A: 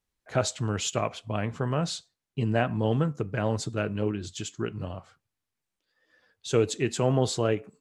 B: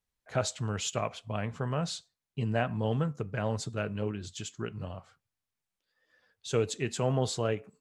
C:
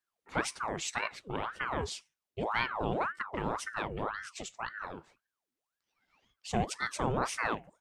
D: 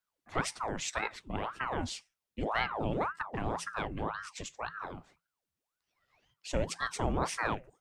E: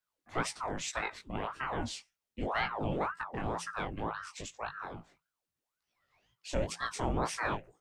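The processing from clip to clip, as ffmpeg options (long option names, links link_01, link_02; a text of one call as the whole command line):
ffmpeg -i in.wav -af "equalizer=frequency=320:width=2.8:gain=-5.5,volume=-3.5dB" out.wav
ffmpeg -i in.wav -af "aeval=exprs='val(0)*sin(2*PI*960*n/s+960*0.75/1.9*sin(2*PI*1.9*n/s))':channel_layout=same" out.wav
ffmpeg -i in.wav -af "afreqshift=-170" out.wav
ffmpeg -i in.wav -af "flanger=delay=17:depth=5.2:speed=2.2,volume=2dB" out.wav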